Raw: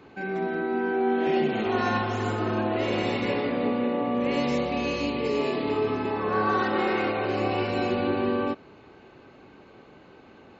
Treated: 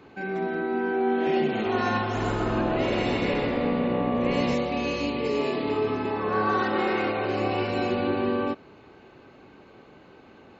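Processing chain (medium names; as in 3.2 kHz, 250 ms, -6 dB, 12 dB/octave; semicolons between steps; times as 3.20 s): 2.02–4.54 s: frequency-shifting echo 130 ms, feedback 43%, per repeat -64 Hz, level -6 dB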